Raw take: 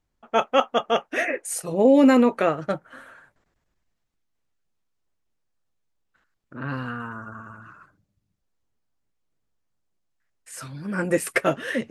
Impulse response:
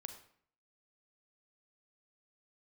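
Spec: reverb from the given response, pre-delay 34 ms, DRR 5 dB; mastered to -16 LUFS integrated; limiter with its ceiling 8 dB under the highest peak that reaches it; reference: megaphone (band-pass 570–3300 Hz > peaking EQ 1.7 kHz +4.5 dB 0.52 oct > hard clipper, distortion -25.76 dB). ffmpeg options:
-filter_complex "[0:a]alimiter=limit=0.211:level=0:latency=1,asplit=2[s0][s1];[1:a]atrim=start_sample=2205,adelay=34[s2];[s1][s2]afir=irnorm=-1:irlink=0,volume=0.891[s3];[s0][s3]amix=inputs=2:normalize=0,highpass=570,lowpass=3300,equalizer=f=1700:t=o:w=0.52:g=4.5,asoftclip=type=hard:threshold=0.158,volume=4.22"

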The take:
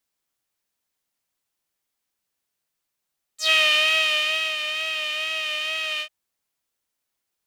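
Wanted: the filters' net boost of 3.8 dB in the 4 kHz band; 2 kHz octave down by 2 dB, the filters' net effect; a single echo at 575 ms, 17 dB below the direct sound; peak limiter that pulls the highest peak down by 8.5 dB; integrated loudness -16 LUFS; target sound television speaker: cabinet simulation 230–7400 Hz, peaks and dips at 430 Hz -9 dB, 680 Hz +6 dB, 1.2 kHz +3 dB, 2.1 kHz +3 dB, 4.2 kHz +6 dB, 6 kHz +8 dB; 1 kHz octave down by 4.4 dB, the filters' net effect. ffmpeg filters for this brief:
-af "equalizer=f=1000:t=o:g=-8,equalizer=f=2000:t=o:g=-6,equalizer=f=4000:t=o:g=5.5,alimiter=limit=0.158:level=0:latency=1,highpass=f=230:w=0.5412,highpass=f=230:w=1.3066,equalizer=f=430:t=q:w=4:g=-9,equalizer=f=680:t=q:w=4:g=6,equalizer=f=1200:t=q:w=4:g=3,equalizer=f=2100:t=q:w=4:g=3,equalizer=f=4200:t=q:w=4:g=6,equalizer=f=6000:t=q:w=4:g=8,lowpass=f=7400:w=0.5412,lowpass=f=7400:w=1.3066,aecho=1:1:575:0.141,volume=2"

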